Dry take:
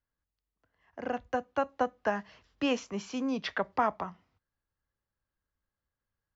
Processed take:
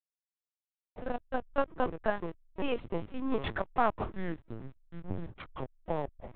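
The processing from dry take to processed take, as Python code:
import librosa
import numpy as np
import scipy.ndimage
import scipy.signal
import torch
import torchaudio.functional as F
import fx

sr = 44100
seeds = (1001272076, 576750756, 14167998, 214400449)

y = fx.echo_pitch(x, sr, ms=225, semitones=-7, count=2, db_per_echo=-6.0)
y = fx.hum_notches(y, sr, base_hz=50, count=4)
y = fx.backlash(y, sr, play_db=-34.0)
y = fx.lpc_vocoder(y, sr, seeds[0], excitation='pitch_kept', order=10)
y = fx.am_noise(y, sr, seeds[1], hz=5.7, depth_pct=50)
y = y * 10.0 ** (3.0 / 20.0)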